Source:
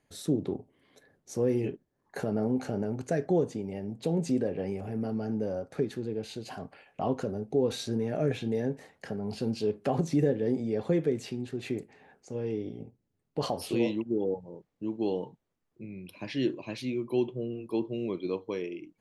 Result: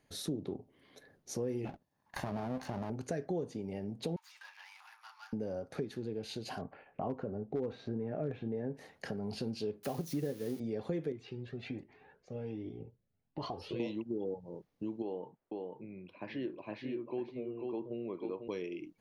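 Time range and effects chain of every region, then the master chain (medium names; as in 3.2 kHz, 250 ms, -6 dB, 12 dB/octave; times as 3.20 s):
1.65–2.90 s: comb filter that takes the minimum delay 1.1 ms + high-pass 110 Hz 6 dB/octave
4.16–5.33 s: median filter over 15 samples + Chebyshev high-pass 910 Hz, order 6
6.61–8.75 s: low-pass 1.6 kHz + hard clipper -18.5 dBFS
9.83–10.60 s: zero-crossing glitches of -29 dBFS + upward expansion, over -33 dBFS
11.12–13.80 s: low-pass 3.3 kHz + Shepard-style flanger rising 1.3 Hz
15.02–18.48 s: low-pass 1.6 kHz + bass shelf 260 Hz -12 dB + delay 493 ms -6 dB
whole clip: peaking EQ 4.4 kHz +2.5 dB; band-stop 7.7 kHz, Q 5.8; compression 2.5:1, threshold -39 dBFS; trim +1 dB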